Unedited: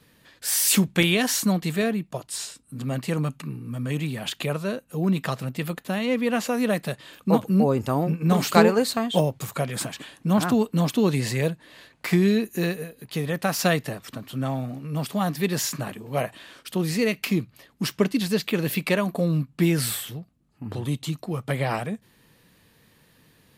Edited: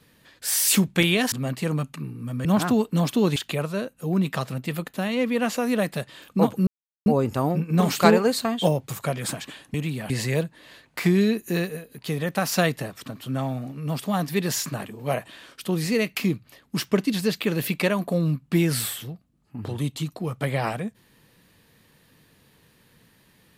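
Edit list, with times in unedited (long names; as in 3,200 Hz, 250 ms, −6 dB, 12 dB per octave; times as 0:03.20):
0:01.32–0:02.78: remove
0:03.91–0:04.27: swap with 0:10.26–0:11.17
0:07.58: splice in silence 0.39 s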